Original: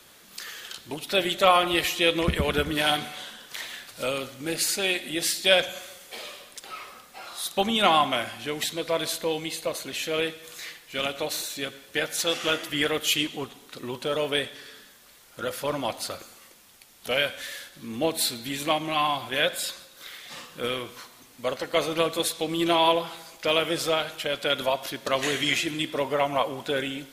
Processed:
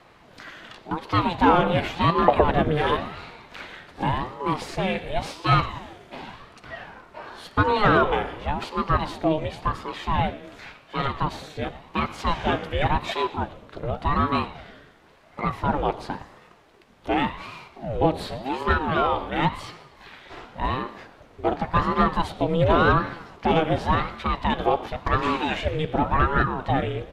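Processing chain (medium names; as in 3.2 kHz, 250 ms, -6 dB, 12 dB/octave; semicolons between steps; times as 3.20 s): overdrive pedal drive 15 dB, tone 2.1 kHz, clips at -4 dBFS; tilt EQ -4.5 dB/octave; frequency-shifting echo 118 ms, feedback 52%, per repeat -76 Hz, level -21 dB; resampled via 32 kHz; ring modulator with a swept carrier 430 Hz, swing 65%, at 0.91 Hz; trim -1 dB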